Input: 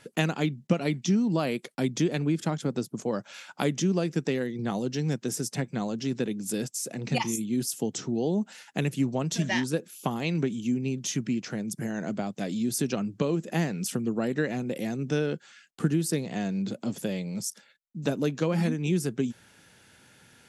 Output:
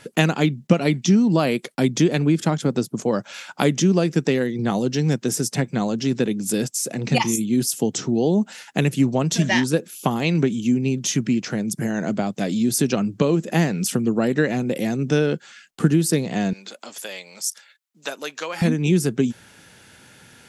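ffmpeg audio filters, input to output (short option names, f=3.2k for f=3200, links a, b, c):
-filter_complex "[0:a]asettb=1/sr,asplit=3[a][b][c];[a]atrim=end=16.534[d];[b]atrim=start=16.53:end=18.62,asetpts=PTS-STARTPTS,afade=t=in:d=0.004:c=qsin,afade=t=out:st=2.086:d=0.004:c=qsin,highpass=930[e];[c]atrim=start=18.616[f];[d][e]acrossfade=d=0.004:c1=hsin:c2=qsin[g];[g][f]acrossfade=d=0.004:c1=qsin:c2=hsin,volume=8dB"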